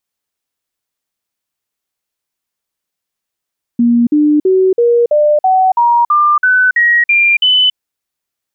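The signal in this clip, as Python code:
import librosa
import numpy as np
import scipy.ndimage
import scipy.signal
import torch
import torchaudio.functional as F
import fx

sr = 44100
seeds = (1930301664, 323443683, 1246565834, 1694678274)

y = fx.stepped_sweep(sr, from_hz=237.0, direction='up', per_octave=3, tones=12, dwell_s=0.28, gap_s=0.05, level_db=-6.5)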